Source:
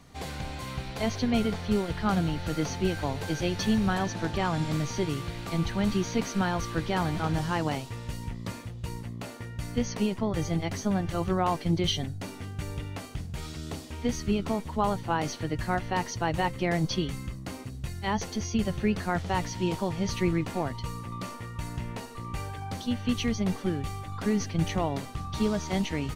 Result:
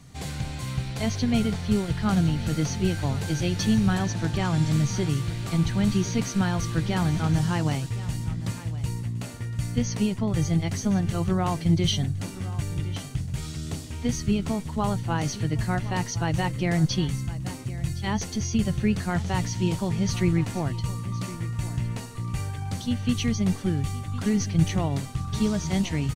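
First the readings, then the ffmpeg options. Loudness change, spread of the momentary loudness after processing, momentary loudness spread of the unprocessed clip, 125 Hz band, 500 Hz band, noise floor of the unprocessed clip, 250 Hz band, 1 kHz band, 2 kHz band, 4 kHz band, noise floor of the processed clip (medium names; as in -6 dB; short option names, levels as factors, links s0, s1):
+4.0 dB, 8 LU, 11 LU, +7.0 dB, -1.0 dB, -41 dBFS, +4.0 dB, -2.0 dB, +0.5 dB, +2.0 dB, -37 dBFS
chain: -af "equalizer=f=125:t=o:w=1:g=9,equalizer=f=500:t=o:w=1:g=-3,equalizer=f=1000:t=o:w=1:g=-3,equalizer=f=8000:t=o:w=1:g=6,aecho=1:1:1063:0.158,volume=1.12"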